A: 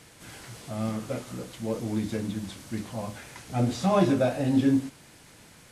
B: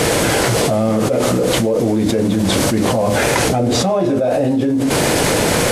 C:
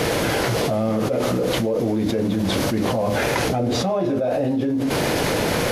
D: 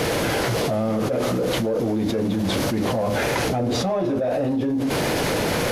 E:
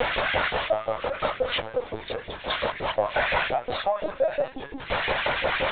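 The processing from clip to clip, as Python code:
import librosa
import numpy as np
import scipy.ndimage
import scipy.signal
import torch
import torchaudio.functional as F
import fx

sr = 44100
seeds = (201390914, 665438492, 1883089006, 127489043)

y1 = fx.peak_eq(x, sr, hz=500.0, db=11.0, octaves=1.4)
y1 = fx.env_flatten(y1, sr, amount_pct=100)
y1 = y1 * librosa.db_to_amplitude(-4.0)
y2 = fx.peak_eq(y1, sr, hz=8200.0, db=-10.0, octaves=0.56)
y2 = y2 * librosa.db_to_amplitude(-5.5)
y3 = 10.0 ** (-14.0 / 20.0) * np.tanh(y2 / 10.0 ** (-14.0 / 20.0))
y4 = fx.filter_lfo_highpass(y3, sr, shape='saw_up', hz=5.7, low_hz=510.0, high_hz=2500.0, q=1.5)
y4 = fx.lpc_vocoder(y4, sr, seeds[0], excitation='pitch_kept', order=16)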